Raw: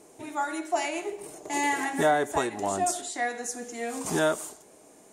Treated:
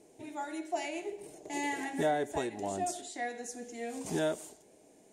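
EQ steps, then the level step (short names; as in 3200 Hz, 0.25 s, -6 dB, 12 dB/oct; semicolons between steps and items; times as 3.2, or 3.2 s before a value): bell 1200 Hz -12.5 dB 0.75 oct; high shelf 5900 Hz -8 dB; -4.5 dB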